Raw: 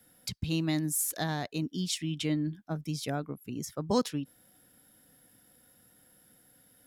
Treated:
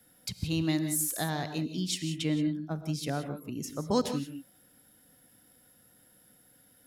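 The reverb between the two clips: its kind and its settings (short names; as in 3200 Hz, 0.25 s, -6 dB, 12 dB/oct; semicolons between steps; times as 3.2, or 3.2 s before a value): non-linear reverb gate 0.2 s rising, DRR 9 dB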